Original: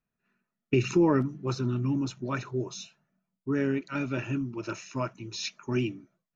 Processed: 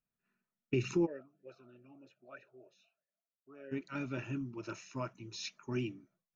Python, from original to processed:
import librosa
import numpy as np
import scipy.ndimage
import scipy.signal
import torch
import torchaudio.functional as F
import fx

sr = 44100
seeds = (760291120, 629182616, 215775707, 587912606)

y = fx.vowel_sweep(x, sr, vowels='a-e', hz=3.1, at=(1.05, 3.71), fade=0.02)
y = F.gain(torch.from_numpy(y), -8.0).numpy()